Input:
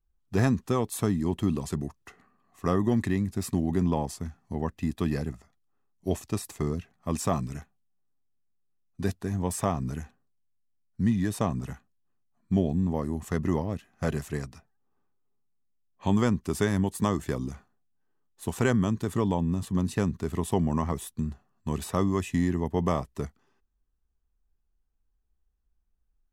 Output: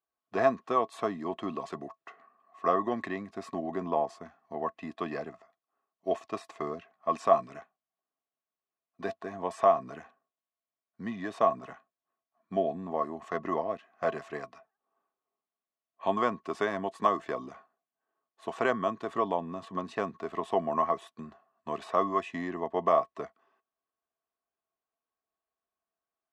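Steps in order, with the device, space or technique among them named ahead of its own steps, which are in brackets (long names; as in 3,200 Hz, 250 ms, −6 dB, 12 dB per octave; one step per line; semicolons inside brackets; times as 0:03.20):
0:03.35–0:04.72: dynamic equaliser 3,100 Hz, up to −3 dB, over −49 dBFS, Q 0.84
tin-can telephone (band-pass filter 430–3,000 Hz; hollow resonant body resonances 670/1,100 Hz, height 15 dB, ringing for 75 ms)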